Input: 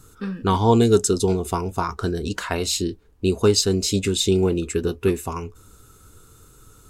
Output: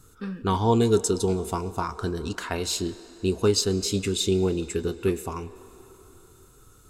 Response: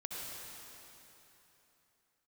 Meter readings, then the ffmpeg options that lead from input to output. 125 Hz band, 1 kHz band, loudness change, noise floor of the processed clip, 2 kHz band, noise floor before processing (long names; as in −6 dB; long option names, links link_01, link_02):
−4.5 dB, −4.0 dB, −4.5 dB, −54 dBFS, −4.5 dB, −51 dBFS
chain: -filter_complex "[0:a]asplit=2[link_01][link_02];[link_02]highpass=frequency=240:width=0.5412,highpass=frequency=240:width=1.3066[link_03];[1:a]atrim=start_sample=2205,highshelf=frequency=10000:gain=-10,adelay=30[link_04];[link_03][link_04]afir=irnorm=-1:irlink=0,volume=-15dB[link_05];[link_01][link_05]amix=inputs=2:normalize=0,volume=-4.5dB"